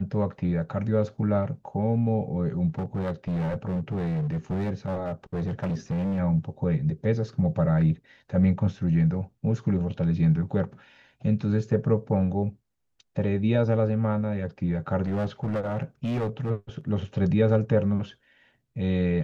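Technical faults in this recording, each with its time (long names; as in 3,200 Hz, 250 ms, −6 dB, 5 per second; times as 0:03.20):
0:02.70–0:06.20: clipping −24.5 dBFS
0:15.02–0:16.51: clipping −23.5 dBFS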